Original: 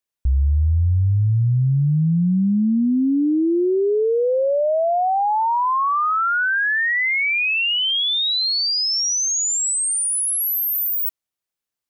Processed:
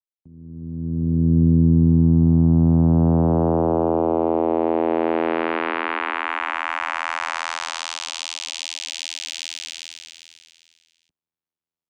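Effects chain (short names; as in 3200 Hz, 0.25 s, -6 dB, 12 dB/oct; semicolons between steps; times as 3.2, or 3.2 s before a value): opening faded in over 1.38 s; vocoder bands 4, saw 82.5 Hz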